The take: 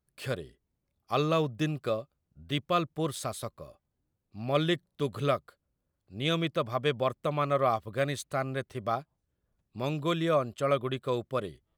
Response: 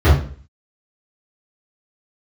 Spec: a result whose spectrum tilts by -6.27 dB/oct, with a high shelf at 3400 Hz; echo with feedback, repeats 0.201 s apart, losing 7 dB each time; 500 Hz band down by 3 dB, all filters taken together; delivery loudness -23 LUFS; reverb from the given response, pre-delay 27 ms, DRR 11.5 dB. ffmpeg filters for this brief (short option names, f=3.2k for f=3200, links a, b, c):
-filter_complex "[0:a]equalizer=f=500:t=o:g=-3.5,highshelf=f=3.4k:g=-3.5,aecho=1:1:201|402|603|804|1005:0.447|0.201|0.0905|0.0407|0.0183,asplit=2[a][b];[1:a]atrim=start_sample=2205,adelay=27[c];[b][c]afir=irnorm=-1:irlink=0,volume=-35dB[d];[a][d]amix=inputs=2:normalize=0,volume=6dB"